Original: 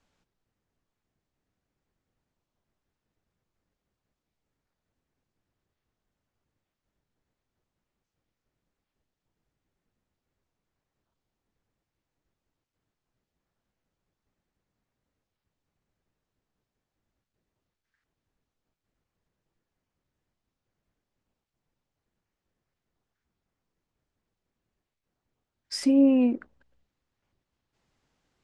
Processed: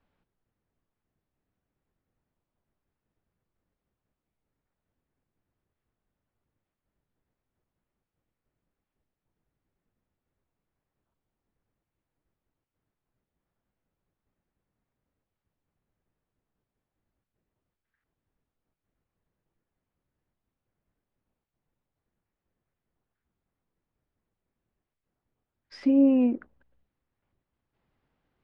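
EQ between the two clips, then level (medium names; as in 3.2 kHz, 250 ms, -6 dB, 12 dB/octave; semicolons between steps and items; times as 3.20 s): distance through air 330 m; 0.0 dB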